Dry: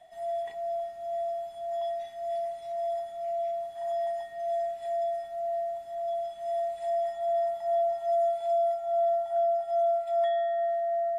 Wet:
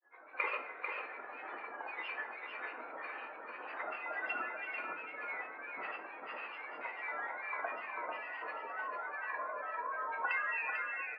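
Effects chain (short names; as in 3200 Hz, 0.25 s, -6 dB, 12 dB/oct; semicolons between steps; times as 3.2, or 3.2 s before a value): opening faded in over 1.63 s; recorder AGC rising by 42 dB/s; HPF 330 Hz 24 dB/oct; spectral gate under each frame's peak -10 dB weak; steep low-pass 2600 Hz 72 dB/oct; tilt +2 dB/oct; fixed phaser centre 700 Hz, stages 6; grains, grains 20/s, pitch spread up and down by 7 st; on a send: echo 0.444 s -5.5 dB; on the sum: shoebox room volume 140 m³, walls mixed, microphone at 0.51 m; gain +17 dB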